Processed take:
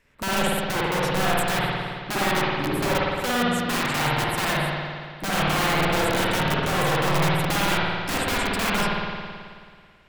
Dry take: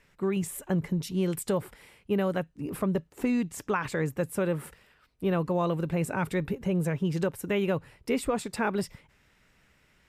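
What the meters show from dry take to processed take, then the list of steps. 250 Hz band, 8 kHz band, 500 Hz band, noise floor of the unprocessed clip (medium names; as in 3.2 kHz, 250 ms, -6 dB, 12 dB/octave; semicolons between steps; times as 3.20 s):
+1.5 dB, +10.0 dB, +3.0 dB, -65 dBFS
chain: waveshaping leveller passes 1; integer overflow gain 23 dB; spring tank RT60 2 s, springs 54 ms, chirp 30 ms, DRR -6 dB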